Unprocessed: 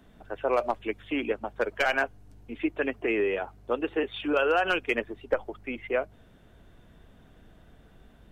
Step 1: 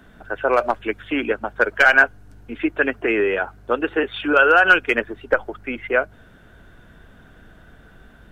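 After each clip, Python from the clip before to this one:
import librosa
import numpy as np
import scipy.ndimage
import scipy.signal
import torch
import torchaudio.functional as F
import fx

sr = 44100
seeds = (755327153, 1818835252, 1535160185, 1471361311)

y = fx.peak_eq(x, sr, hz=1500.0, db=10.5, octaves=0.43)
y = y * librosa.db_to_amplitude(6.5)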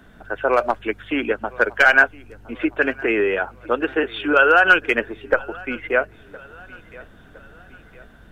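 y = fx.echo_feedback(x, sr, ms=1013, feedback_pct=47, wet_db=-22.5)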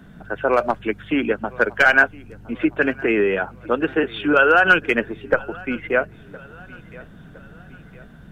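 y = fx.peak_eq(x, sr, hz=160.0, db=13.0, octaves=1.1)
y = y * librosa.db_to_amplitude(-1.0)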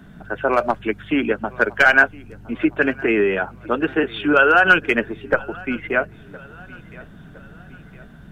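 y = fx.notch(x, sr, hz=500.0, q=12.0)
y = y * librosa.db_to_amplitude(1.0)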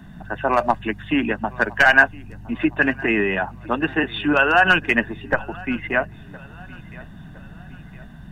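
y = x + 0.56 * np.pad(x, (int(1.1 * sr / 1000.0), 0))[:len(x)]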